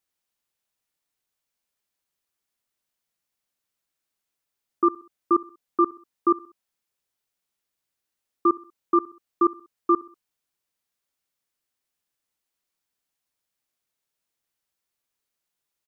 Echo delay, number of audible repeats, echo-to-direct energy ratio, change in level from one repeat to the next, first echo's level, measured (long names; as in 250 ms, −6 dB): 64 ms, 3, −20.0 dB, −7.0 dB, −21.0 dB